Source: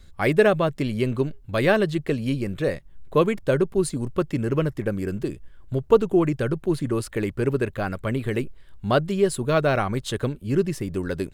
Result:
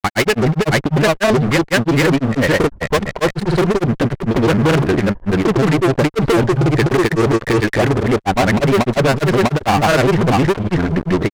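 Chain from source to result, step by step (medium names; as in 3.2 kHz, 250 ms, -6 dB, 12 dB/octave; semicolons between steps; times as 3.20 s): LFO low-pass square 0.87 Hz 940–2000 Hz; fuzz box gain 29 dB, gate -38 dBFS; granulator, spray 606 ms; trim +3.5 dB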